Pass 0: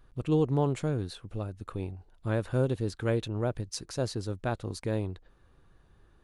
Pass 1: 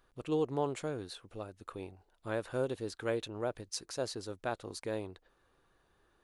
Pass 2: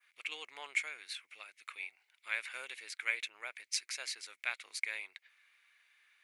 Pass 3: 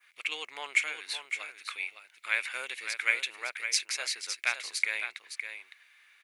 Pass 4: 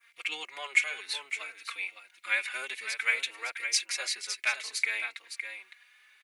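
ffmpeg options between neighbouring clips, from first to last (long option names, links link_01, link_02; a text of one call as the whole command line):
ffmpeg -i in.wav -af "bass=frequency=250:gain=-13,treble=frequency=4000:gain=1,volume=-2.5dB" out.wav
ffmpeg -i in.wav -af "adynamicequalizer=threshold=0.00141:dfrequency=3600:dqfactor=0.99:tfrequency=3600:tqfactor=0.99:attack=5:release=100:ratio=0.375:range=2.5:mode=cutabove:tftype=bell,highpass=frequency=2200:width_type=q:width=9.3,volume=3dB" out.wav
ffmpeg -i in.wav -af "aecho=1:1:561:0.376,volume=7.5dB" out.wav
ffmpeg -i in.wav -filter_complex "[0:a]asplit=2[link_01][link_02];[link_02]adelay=3.9,afreqshift=0.58[link_03];[link_01][link_03]amix=inputs=2:normalize=1,volume=3.5dB" out.wav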